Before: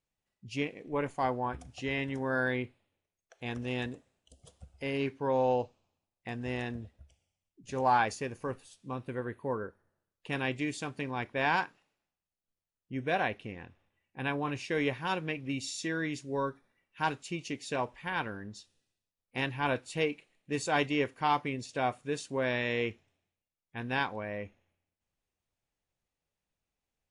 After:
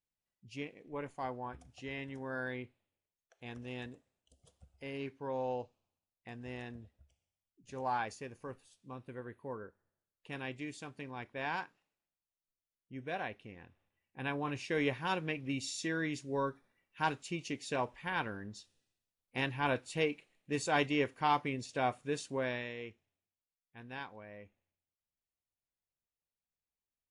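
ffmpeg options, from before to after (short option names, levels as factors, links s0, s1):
-af "volume=0.794,afade=t=in:st=13.47:d=1.37:silence=0.446684,afade=t=out:st=22.27:d=0.47:silence=0.281838"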